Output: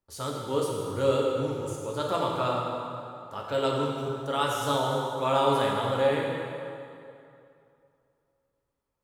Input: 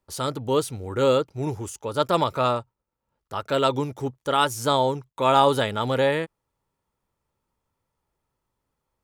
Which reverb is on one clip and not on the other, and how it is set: plate-style reverb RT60 2.6 s, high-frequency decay 0.75×, DRR -2.5 dB; trim -9 dB

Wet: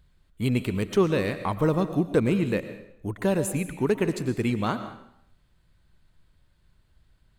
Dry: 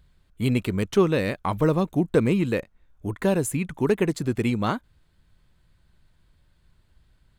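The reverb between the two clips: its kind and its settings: algorithmic reverb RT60 0.71 s, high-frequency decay 0.95×, pre-delay 75 ms, DRR 10 dB; trim -2 dB

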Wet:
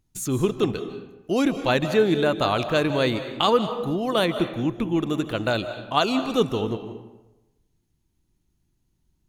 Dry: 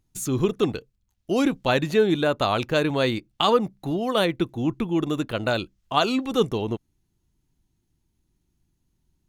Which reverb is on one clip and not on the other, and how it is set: algorithmic reverb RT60 1 s, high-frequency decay 0.65×, pre-delay 120 ms, DRR 9.5 dB

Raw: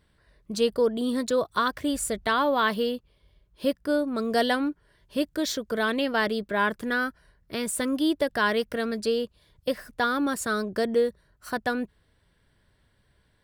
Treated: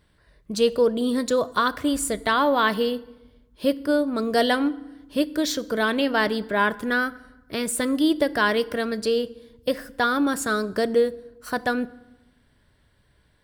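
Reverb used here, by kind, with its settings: FDN reverb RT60 1 s, low-frequency decay 1.35×, high-frequency decay 0.7×, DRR 16 dB; trim +3 dB

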